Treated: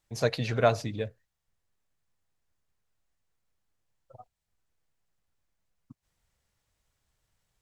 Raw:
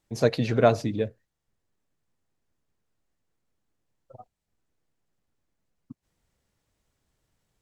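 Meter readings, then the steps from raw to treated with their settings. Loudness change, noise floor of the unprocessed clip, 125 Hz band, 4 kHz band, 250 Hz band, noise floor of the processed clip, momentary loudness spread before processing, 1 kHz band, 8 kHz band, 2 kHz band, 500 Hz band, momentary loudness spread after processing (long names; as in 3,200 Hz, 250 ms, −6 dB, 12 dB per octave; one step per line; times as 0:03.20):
−4.0 dB, −83 dBFS, −3.5 dB, 0.0 dB, −8.0 dB, −83 dBFS, 10 LU, −2.5 dB, 0.0 dB, −0.5 dB, −4.5 dB, 11 LU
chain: parametric band 280 Hz −9 dB 1.9 octaves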